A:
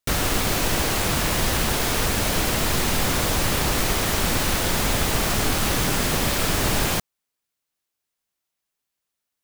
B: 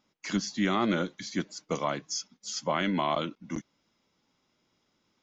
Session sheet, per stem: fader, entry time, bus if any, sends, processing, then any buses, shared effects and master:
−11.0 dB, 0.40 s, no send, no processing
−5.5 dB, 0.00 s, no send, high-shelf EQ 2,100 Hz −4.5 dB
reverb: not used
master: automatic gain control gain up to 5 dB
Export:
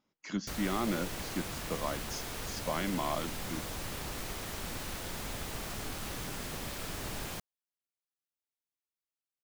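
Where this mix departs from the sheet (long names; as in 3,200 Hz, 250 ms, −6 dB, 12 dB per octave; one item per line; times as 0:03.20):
stem A −11.0 dB → −17.5 dB
master: missing automatic gain control gain up to 5 dB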